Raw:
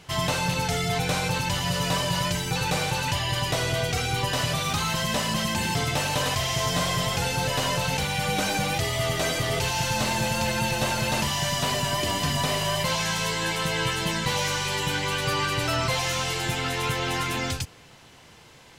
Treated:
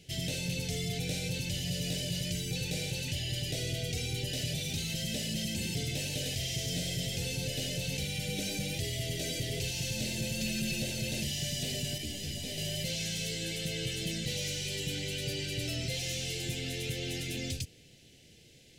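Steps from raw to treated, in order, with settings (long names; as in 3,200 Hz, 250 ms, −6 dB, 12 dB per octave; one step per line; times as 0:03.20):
0:10.40–0:10.82: comb filter 5 ms, depth 78%
soft clipping −20 dBFS, distortion −18 dB
Butterworth band-reject 1,100 Hz, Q 0.55
0:11.98–0:12.58: string-ensemble chorus
level −5 dB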